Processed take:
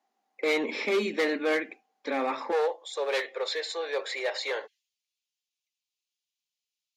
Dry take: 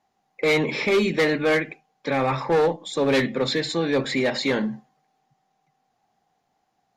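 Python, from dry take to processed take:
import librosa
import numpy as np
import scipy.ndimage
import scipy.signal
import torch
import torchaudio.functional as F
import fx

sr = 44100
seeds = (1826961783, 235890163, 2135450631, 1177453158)

y = fx.steep_highpass(x, sr, hz=fx.steps((0.0, 220.0), (2.51, 420.0), (4.66, 2500.0)), slope=48)
y = y * 10.0 ** (-6.0 / 20.0)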